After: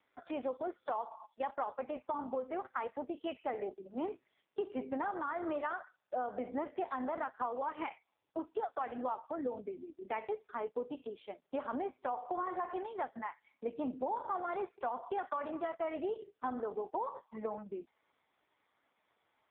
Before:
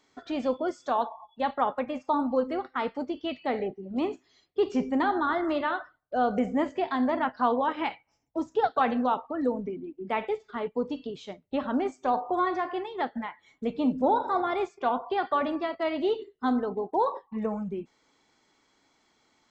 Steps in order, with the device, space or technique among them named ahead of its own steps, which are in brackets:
voicemail (band-pass filter 400–2,600 Hz; downward compressor 8 to 1, threshold −30 dBFS, peak gain reduction 11 dB; level −2 dB; AMR narrowband 5.15 kbit/s 8,000 Hz)

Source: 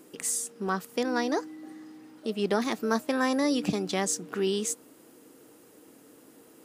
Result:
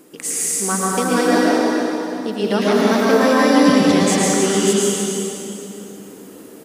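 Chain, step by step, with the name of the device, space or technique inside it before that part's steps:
cave (single-tap delay 308 ms −8.5 dB; convolution reverb RT60 3.1 s, pre-delay 103 ms, DRR −6 dB)
level +5.5 dB

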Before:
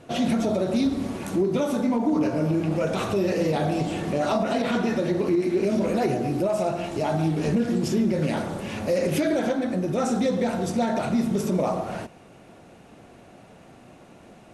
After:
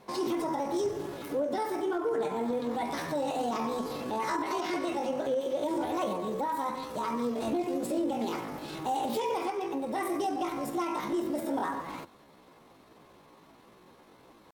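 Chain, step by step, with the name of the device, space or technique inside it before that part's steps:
chipmunk voice (pitch shifter +7 semitones)
level −7.5 dB

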